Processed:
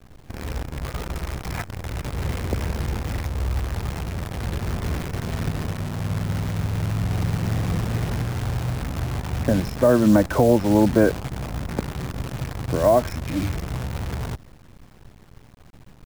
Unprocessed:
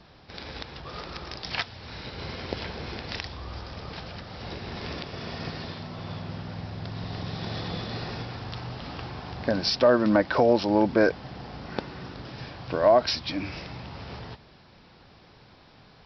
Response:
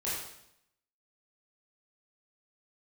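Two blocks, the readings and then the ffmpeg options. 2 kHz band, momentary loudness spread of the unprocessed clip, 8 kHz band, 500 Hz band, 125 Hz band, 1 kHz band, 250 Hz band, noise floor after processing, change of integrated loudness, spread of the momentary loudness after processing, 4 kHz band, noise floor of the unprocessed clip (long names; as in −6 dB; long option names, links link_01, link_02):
+0.5 dB, 19 LU, can't be measured, +2.5 dB, +12.0 dB, +1.5 dB, +6.5 dB, −48 dBFS, +4.0 dB, 14 LU, −5.0 dB, −54 dBFS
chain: -filter_complex "[0:a]aemphasis=mode=reproduction:type=riaa,afftfilt=real='re*(1-between(b*sr/4096,2500,5100))':imag='im*(1-between(b*sr/4096,2500,5100))':win_size=4096:overlap=0.75,acrossover=split=230|350|2300[link_01][link_02][link_03][link_04];[link_04]alimiter=level_in=11.5dB:limit=-24dB:level=0:latency=1:release=417,volume=-11.5dB[link_05];[link_01][link_02][link_03][link_05]amix=inputs=4:normalize=0,acrusher=bits=6:dc=4:mix=0:aa=0.000001"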